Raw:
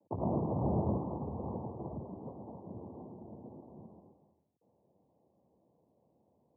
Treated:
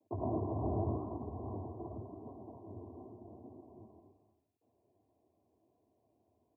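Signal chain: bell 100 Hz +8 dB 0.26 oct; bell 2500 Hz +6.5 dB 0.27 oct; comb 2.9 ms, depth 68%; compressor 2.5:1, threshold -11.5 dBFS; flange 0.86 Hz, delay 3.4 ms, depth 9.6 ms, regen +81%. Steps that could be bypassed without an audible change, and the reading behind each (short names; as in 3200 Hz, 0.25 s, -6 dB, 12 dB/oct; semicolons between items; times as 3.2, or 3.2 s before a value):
bell 2500 Hz: input band ends at 1100 Hz; compressor, threshold -11.5 dBFS: input peak -18.5 dBFS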